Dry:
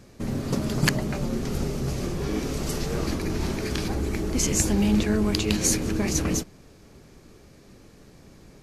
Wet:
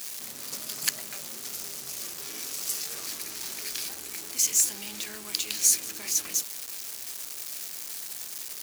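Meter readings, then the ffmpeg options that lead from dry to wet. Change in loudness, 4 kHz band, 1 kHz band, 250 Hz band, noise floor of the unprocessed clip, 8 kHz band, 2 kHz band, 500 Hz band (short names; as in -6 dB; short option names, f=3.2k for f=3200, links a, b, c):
-3.0 dB, 0.0 dB, -11.5 dB, -25.0 dB, -52 dBFS, +3.5 dB, -6.5 dB, -19.0 dB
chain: -af "aeval=exprs='val(0)+0.5*0.0398*sgn(val(0))':c=same,aderivative,volume=2dB"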